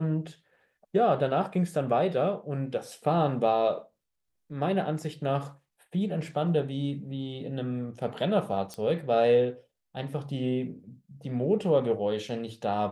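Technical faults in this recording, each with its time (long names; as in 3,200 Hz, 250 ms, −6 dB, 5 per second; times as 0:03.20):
0:08.74: click −23 dBFS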